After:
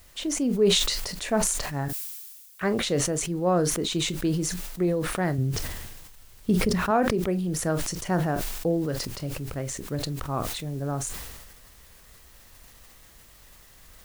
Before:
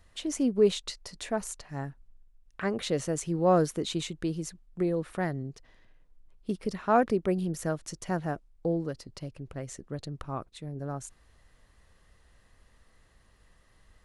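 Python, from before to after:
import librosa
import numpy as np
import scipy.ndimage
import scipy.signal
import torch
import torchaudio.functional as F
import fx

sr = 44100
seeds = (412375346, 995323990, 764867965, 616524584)

p1 = fx.quant_dither(x, sr, seeds[0], bits=8, dither='triangular')
p2 = x + (p1 * 10.0 ** (-10.5 / 20.0))
p3 = fx.differentiator(p2, sr, at=(1.88, 2.61))
p4 = p3 + fx.room_early_taps(p3, sr, ms=(28, 45), db=(-15.0, -17.5), dry=0)
p5 = fx.rider(p4, sr, range_db=3, speed_s=0.5)
p6 = fx.peak_eq(p5, sr, hz=86.0, db=12.0, octaves=1.8, at=(5.38, 6.91))
y = fx.sustainer(p6, sr, db_per_s=36.0)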